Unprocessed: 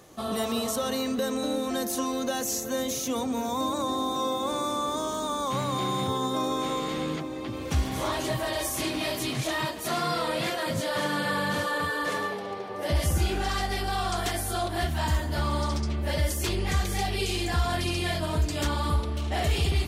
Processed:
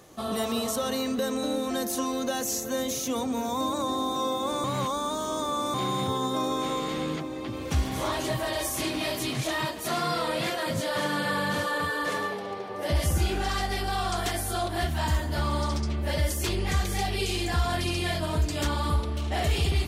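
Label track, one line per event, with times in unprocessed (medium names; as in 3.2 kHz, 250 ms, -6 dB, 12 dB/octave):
4.640000	5.740000	reverse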